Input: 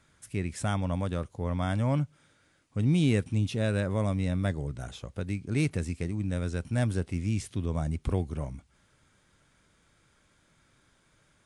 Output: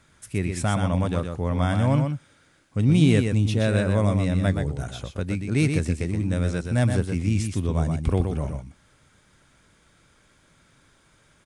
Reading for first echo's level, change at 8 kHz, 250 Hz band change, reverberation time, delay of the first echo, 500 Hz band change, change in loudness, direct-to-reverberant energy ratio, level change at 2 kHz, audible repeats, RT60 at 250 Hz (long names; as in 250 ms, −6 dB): −6.0 dB, +6.5 dB, +6.5 dB, no reverb audible, 123 ms, +6.5 dB, +6.5 dB, no reverb audible, +6.5 dB, 1, no reverb audible